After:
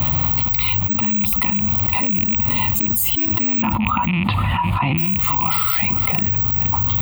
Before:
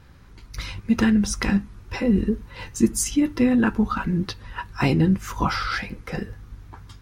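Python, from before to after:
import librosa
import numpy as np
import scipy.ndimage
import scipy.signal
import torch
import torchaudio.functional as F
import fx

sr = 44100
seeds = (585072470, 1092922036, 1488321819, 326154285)

p1 = fx.rattle_buzz(x, sr, strikes_db=-25.0, level_db=-16.0)
p2 = (np.kron(scipy.signal.resample_poly(p1, 1, 2), np.eye(2)[0]) * 2)[:len(p1)]
p3 = fx.lowpass(p2, sr, hz=3100.0, slope=24, at=(3.62, 4.98))
p4 = fx.rider(p3, sr, range_db=5, speed_s=0.5)
p5 = fx.dmg_noise_colour(p4, sr, seeds[0], colour='brown', level_db=-39.0)
p6 = scipy.signal.sosfilt(scipy.signal.butter(4, 67.0, 'highpass', fs=sr, output='sos'), p5)
p7 = fx.fixed_phaser(p6, sr, hz=1600.0, stages=6)
p8 = p7 + fx.echo_single(p7, sr, ms=469, db=-22.0, dry=0)
p9 = fx.dynamic_eq(p8, sr, hz=970.0, q=7.0, threshold_db=-48.0, ratio=4.0, max_db=7)
p10 = fx.env_flatten(p9, sr, amount_pct=100)
y = F.gain(torch.from_numpy(p10), -7.0).numpy()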